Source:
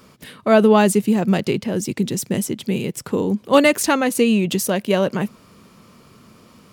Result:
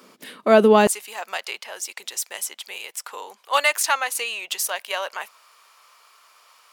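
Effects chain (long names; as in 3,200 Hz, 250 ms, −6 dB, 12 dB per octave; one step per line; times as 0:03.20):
high-pass filter 230 Hz 24 dB per octave, from 0:00.87 790 Hz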